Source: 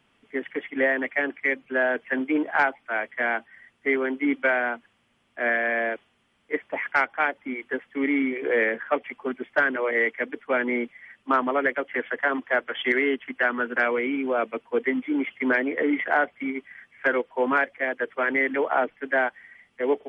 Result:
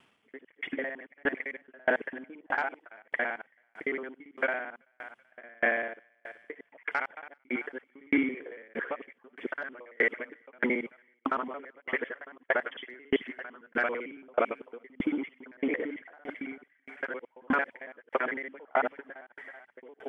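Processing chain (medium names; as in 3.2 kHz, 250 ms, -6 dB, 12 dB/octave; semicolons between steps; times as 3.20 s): time reversed locally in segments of 56 ms; high-pass 180 Hz 6 dB/octave; peak limiter -17.5 dBFS, peak gain reduction 9 dB; on a send: thinning echo 382 ms, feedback 33%, high-pass 720 Hz, level -15 dB; on the sum: sawtooth tremolo in dB decaying 1.6 Hz, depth 36 dB; trim +4.5 dB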